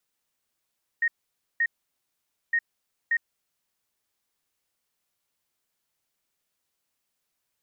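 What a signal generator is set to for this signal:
beeps in groups sine 1,860 Hz, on 0.06 s, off 0.52 s, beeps 2, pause 0.87 s, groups 2, −20 dBFS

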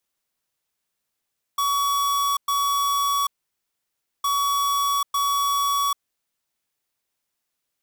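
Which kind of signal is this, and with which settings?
beeps in groups square 1,130 Hz, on 0.79 s, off 0.11 s, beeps 2, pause 0.97 s, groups 2, −22 dBFS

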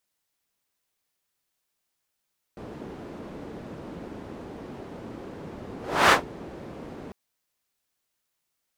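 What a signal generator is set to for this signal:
pass-by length 4.55 s, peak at 0:03.54, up 0.34 s, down 0.14 s, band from 310 Hz, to 1,300 Hz, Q 0.96, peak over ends 23.5 dB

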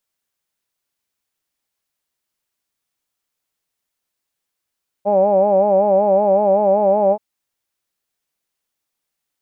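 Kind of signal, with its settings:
vowel by formant synthesis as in hawed, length 2.13 s, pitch 197 Hz, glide +0.5 semitones, vibrato 5.3 Hz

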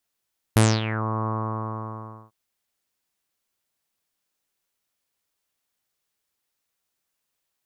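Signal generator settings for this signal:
subtractive voice saw A2 24 dB per octave, low-pass 1,100 Hz, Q 6.1, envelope 3.5 octaves, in 0.46 s, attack 3.4 ms, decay 0.24 s, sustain −13 dB, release 1.04 s, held 0.71 s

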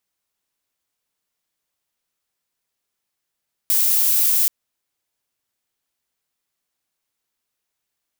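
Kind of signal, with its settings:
noise violet, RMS −17 dBFS 0.78 s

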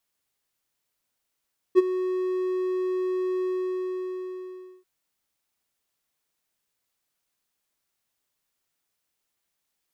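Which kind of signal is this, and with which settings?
note with an ADSR envelope triangle 369 Hz, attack 35 ms, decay 24 ms, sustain −14 dB, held 1.67 s, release 1,420 ms −8 dBFS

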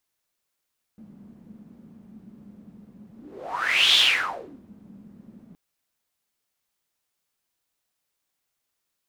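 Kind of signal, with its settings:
pass-by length 4.57 s, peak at 0:02.98, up 0.88 s, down 0.71 s, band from 210 Hz, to 3,400 Hz, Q 7.3, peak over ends 30.5 dB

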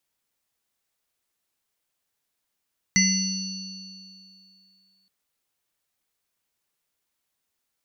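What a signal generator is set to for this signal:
inharmonic partials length 2.12 s, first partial 190 Hz, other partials 2,040/2,790/4,450/5,930 Hz, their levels 1/−16/−3.5/1 dB, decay 2.26 s, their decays 0.56/2.47/3.04/1.65 s, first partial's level −20 dB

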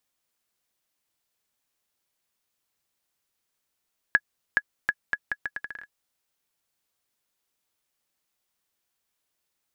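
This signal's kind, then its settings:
bouncing ball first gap 0.42 s, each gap 0.76, 1,680 Hz, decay 50 ms −6.5 dBFS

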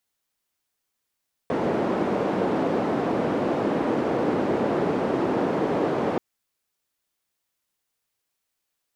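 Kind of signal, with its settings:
band-limited noise 240–440 Hz, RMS −24 dBFS 4.68 s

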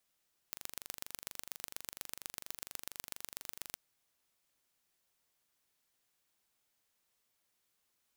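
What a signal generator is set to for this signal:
impulse train 24.3 per second, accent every 3, −12 dBFS 3.23 s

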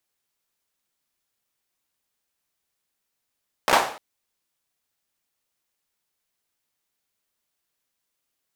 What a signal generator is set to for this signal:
synth clap length 0.30 s, apart 16 ms, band 760 Hz, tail 0.48 s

